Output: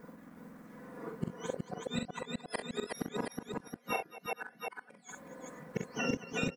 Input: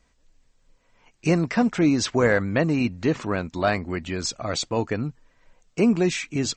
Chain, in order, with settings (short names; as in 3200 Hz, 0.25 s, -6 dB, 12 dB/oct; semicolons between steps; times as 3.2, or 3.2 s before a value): spectrum mirrored in octaves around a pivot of 1000 Hz; comb 4.1 ms, depth 99%; compressor 12:1, threshold -32 dBFS, peak gain reduction 21 dB; limiter -30 dBFS, peak gain reduction 8.5 dB; resonator 340 Hz, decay 0.21 s, harmonics all, mix 40%; bit-crush 12-bit; resonant high shelf 2300 Hz -13 dB, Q 1.5; flipped gate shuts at -38 dBFS, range -37 dB; tapped delay 43/65/222/369/470/722 ms -5/-13/-15.5/-3/-17.5/-6 dB; gain +16 dB